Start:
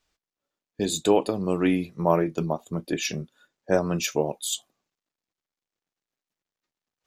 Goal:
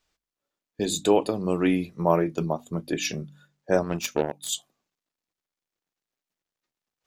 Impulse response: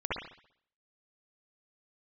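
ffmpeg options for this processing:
-filter_complex "[0:a]bandreject=frequency=48.55:width_type=h:width=4,bandreject=frequency=97.1:width_type=h:width=4,bandreject=frequency=145.65:width_type=h:width=4,bandreject=frequency=194.2:width_type=h:width=4,bandreject=frequency=242.75:width_type=h:width=4,bandreject=frequency=291.3:width_type=h:width=4,asettb=1/sr,asplit=3[link_01][link_02][link_03];[link_01]atrim=end=3.834[link_04];[link_02]atrim=start=3.83:end=4.49,asetpts=PTS-STARTPTS,afade=type=in:duration=0.004:curve=qsin,afade=type=out:start_time=0.656:duration=0.004:curve=qsin,aeval=exprs='0.299*(cos(1*acos(clip(val(0)/0.299,-1,1)))-cos(1*PI/2))+0.0266*(cos(7*acos(clip(val(0)/0.299,-1,1)))-cos(7*PI/2))':channel_layout=same[link_05];[link_03]atrim=start=4.486[link_06];[link_04][link_05]acrossfade=duration=0.004:curve1=hsin:curve2=qsin[link_07];[link_07][link_06]acrossfade=duration=0.004:curve1=qsin:curve2=hsin"

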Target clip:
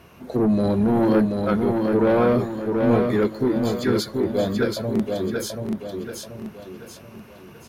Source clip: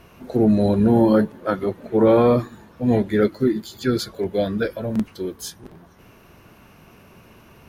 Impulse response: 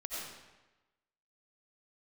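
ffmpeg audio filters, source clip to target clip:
-af "highpass=53,asoftclip=type=tanh:threshold=-13.5dB,aecho=1:1:733|1466|2199|2932|3665:0.631|0.259|0.106|0.0435|0.0178"

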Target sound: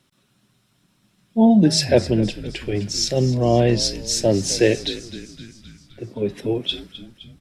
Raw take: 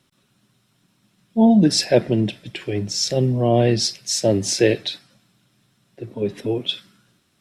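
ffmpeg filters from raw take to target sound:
ffmpeg -i in.wav -filter_complex "[0:a]asplit=7[link_01][link_02][link_03][link_04][link_05][link_06][link_07];[link_02]adelay=259,afreqshift=-68,volume=-15.5dB[link_08];[link_03]adelay=518,afreqshift=-136,volume=-19.8dB[link_09];[link_04]adelay=777,afreqshift=-204,volume=-24.1dB[link_10];[link_05]adelay=1036,afreqshift=-272,volume=-28.4dB[link_11];[link_06]adelay=1295,afreqshift=-340,volume=-32.7dB[link_12];[link_07]adelay=1554,afreqshift=-408,volume=-37dB[link_13];[link_01][link_08][link_09][link_10][link_11][link_12][link_13]amix=inputs=7:normalize=0" out.wav

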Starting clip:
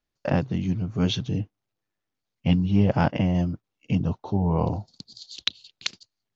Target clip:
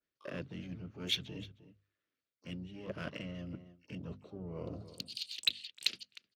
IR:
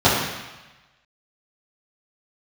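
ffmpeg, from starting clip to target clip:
-filter_complex "[0:a]acrossover=split=370|930[link_01][link_02][link_03];[link_03]adynamicsmooth=sensitivity=7.5:basefreq=4000[link_04];[link_01][link_02][link_04]amix=inputs=3:normalize=0,aeval=exprs='clip(val(0),-1,0.224)':channel_layout=same,asuperstop=centerf=860:order=4:qfactor=1.4,asplit=2[link_05][link_06];[link_06]adelay=309,volume=-27dB,highshelf=frequency=4000:gain=-6.95[link_07];[link_05][link_07]amix=inputs=2:normalize=0,areverse,acompressor=threshold=-35dB:ratio=10,areverse,highpass=frequency=77:poles=1,lowshelf=frequency=260:gain=-11,bandreject=frequency=50:width_type=h:width=6,bandreject=frequency=100:width_type=h:width=6,bandreject=frequency=150:width_type=h:width=6,bandreject=frequency=200:width_type=h:width=6,bandreject=frequency=250:width_type=h:width=6,asplit=3[link_08][link_09][link_10];[link_09]asetrate=29433,aresample=44100,atempo=1.49831,volume=-12dB[link_11];[link_10]asetrate=88200,aresample=44100,atempo=0.5,volume=-16dB[link_12];[link_08][link_11][link_12]amix=inputs=3:normalize=0,adynamicequalizer=threshold=0.00158:dfrequency=3000:dqfactor=1.1:tfrequency=3000:tqfactor=1.1:attack=5:release=100:ratio=0.375:range=3.5:mode=boostabove:tftype=bell,volume=2.5dB"

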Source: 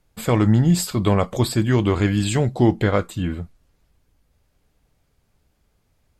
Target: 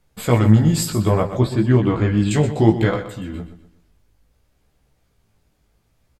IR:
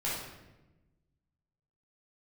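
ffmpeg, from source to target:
-filter_complex "[0:a]asettb=1/sr,asplit=3[link_01][link_02][link_03];[link_01]atrim=end=0.904[link_04];[link_02]atrim=start=0.9:end=2.31,asetpts=PTS-STARTPTS,afade=type=in:duration=0.004:curve=qsin,afade=type=out:start_time=1.406:duration=0.004:curve=qsin,lowpass=frequency=1500:poles=1[link_05];[link_03]atrim=start=2.306[link_06];[link_04][link_05]acrossfade=duration=0.004:curve1=hsin:curve2=qsin[link_07];[link_07][link_06]acrossfade=duration=0.004:curve1=qsin:curve2=hsin,asettb=1/sr,asplit=3[link_08][link_09][link_10];[link_08]atrim=end=2.944[link_11];[link_09]atrim=start=2.94:end=3.34,asetpts=PTS-STARTPTS,afade=type=in:duration=0.004:curve=qsin,afade=type=out:start_time=0.396:duration=0.004:curve=qsin,acompressor=threshold=-31dB:ratio=2.5[link_12];[link_10]atrim=start=3.336[link_13];[link_11][link_12]acrossfade=duration=0.004:curve1=hsin:curve2=qsin[link_14];[link_14][link_13]acrossfade=duration=0.004:curve1=qsin:curve2=hsin,flanger=delay=15:depth=4.6:speed=0.63,aecho=1:1:124|248|372|496:0.251|0.0929|0.0344|0.0127,volume=4.5dB"

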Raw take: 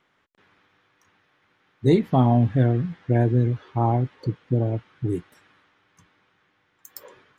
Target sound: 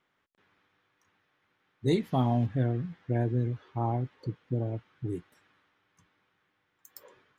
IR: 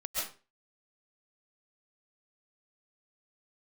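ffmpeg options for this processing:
-filter_complex "[0:a]asplit=3[link_01][link_02][link_03];[link_01]afade=type=out:start_time=1.87:duration=0.02[link_04];[link_02]highshelf=frequency=3100:gain=11,afade=type=in:start_time=1.87:duration=0.02,afade=type=out:start_time=2.45:duration=0.02[link_05];[link_03]afade=type=in:start_time=2.45:duration=0.02[link_06];[link_04][link_05][link_06]amix=inputs=3:normalize=0,volume=-8.5dB"

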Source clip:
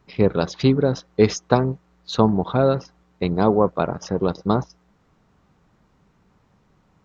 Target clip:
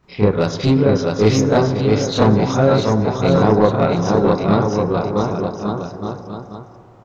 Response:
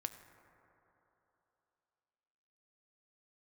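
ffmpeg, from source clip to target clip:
-filter_complex "[0:a]aecho=1:1:660|1155|1526|1805|2014:0.631|0.398|0.251|0.158|0.1,acontrast=90,asplit=2[link_01][link_02];[1:a]atrim=start_sample=2205,adelay=29[link_03];[link_02][link_03]afir=irnorm=-1:irlink=0,volume=7dB[link_04];[link_01][link_04]amix=inputs=2:normalize=0,volume=-8.5dB"

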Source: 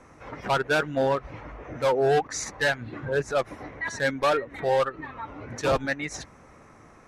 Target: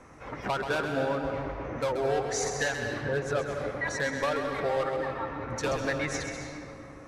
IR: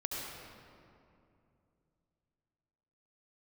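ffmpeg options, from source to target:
-filter_complex "[0:a]acompressor=threshold=-27dB:ratio=6,asplit=2[link_01][link_02];[1:a]atrim=start_sample=2205,adelay=131[link_03];[link_02][link_03]afir=irnorm=-1:irlink=0,volume=-5.5dB[link_04];[link_01][link_04]amix=inputs=2:normalize=0"

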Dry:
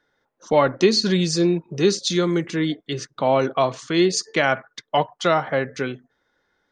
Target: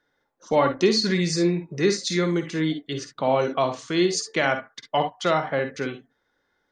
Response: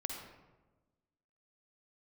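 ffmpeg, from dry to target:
-filter_complex "[0:a]asettb=1/sr,asplit=3[link_01][link_02][link_03];[link_01]atrim=end=1.014[link_04];[link_02]atrim=start=1.01:end=2.26,asetpts=PTS-STARTPTS,afade=type=in:duration=0.004:curve=qsin,afade=type=out:start_time=1.246:duration=0.004:curve=qsin,equalizer=frequency=800:width_type=o:width=0.33:gain=-3,equalizer=frequency=2000:width_type=o:width=0.33:gain=10,equalizer=frequency=3150:width_type=o:width=0.33:gain=-7[link_05];[link_03]atrim=start=2.256[link_06];[link_04][link_05]acrossfade=duration=0.004:curve1=hsin:curve2=qsin[link_07];[link_07][link_06]acrossfade=duration=0.004:curve1=qsin:curve2=hsin[link_08];[1:a]atrim=start_sample=2205,atrim=end_sample=3087[link_09];[link_08][link_09]afir=irnorm=-1:irlink=0,volume=-1.5dB"

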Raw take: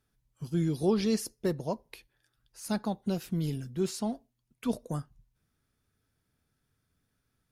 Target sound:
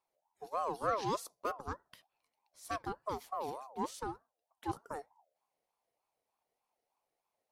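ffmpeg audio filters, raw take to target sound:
ffmpeg -i in.wav -af "aeval=exprs='0.168*(cos(1*acos(clip(val(0)/0.168,-1,1)))-cos(1*PI/2))+0.00531*(cos(7*acos(clip(val(0)/0.168,-1,1)))-cos(7*PI/2))':channel_layout=same,aeval=exprs='val(0)*sin(2*PI*750*n/s+750*0.25/3.3*sin(2*PI*3.3*n/s))':channel_layout=same,volume=-4.5dB" out.wav

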